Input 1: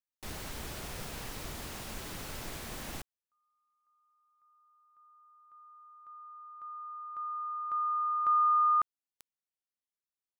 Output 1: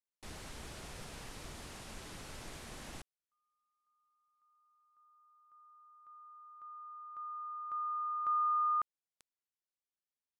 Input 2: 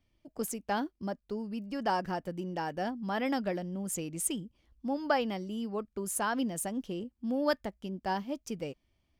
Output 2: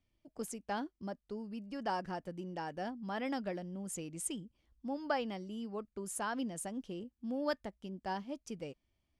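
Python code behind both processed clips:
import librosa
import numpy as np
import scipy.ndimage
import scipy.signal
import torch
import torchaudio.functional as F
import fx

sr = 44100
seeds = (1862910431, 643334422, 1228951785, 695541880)

y = scipy.signal.sosfilt(scipy.signal.butter(4, 11000.0, 'lowpass', fs=sr, output='sos'), x)
y = F.gain(torch.from_numpy(y), -6.0).numpy()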